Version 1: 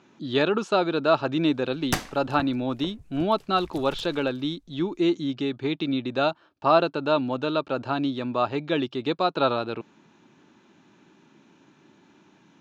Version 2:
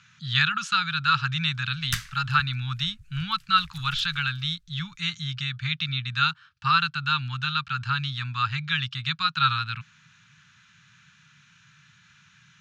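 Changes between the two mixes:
speech +8.0 dB; master: add elliptic band-stop 140–1400 Hz, stop band 50 dB

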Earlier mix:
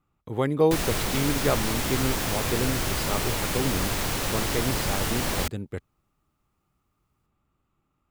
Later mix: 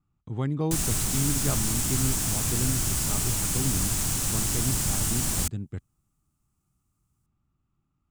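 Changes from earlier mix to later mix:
speech: add air absorption 140 m; master: add graphic EQ 125/500/1000/2000/4000/8000 Hz +3/-12/-4/-7/-5/+10 dB

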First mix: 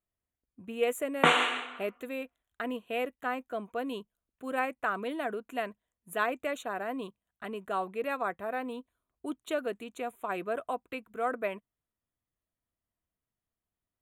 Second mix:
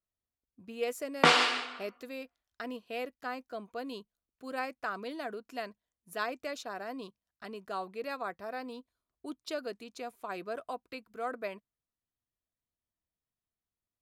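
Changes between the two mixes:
speech -5.0 dB; master: remove Butterworth band-stop 5000 Hz, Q 1.4

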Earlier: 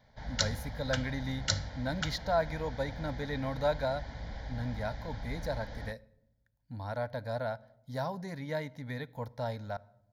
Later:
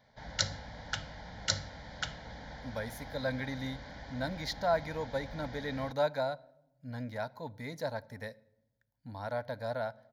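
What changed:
speech: entry +2.35 s; master: add low shelf 96 Hz -11.5 dB

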